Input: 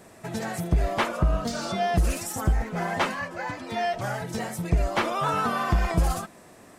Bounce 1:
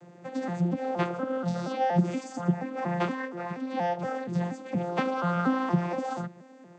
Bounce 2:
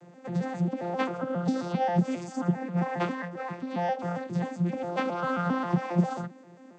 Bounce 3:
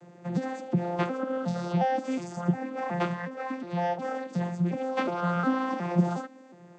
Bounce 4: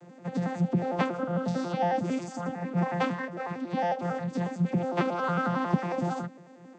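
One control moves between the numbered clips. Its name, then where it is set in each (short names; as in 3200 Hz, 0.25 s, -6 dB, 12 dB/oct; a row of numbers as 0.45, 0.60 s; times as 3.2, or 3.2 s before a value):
arpeggiated vocoder, a note every: 237, 134, 362, 91 ms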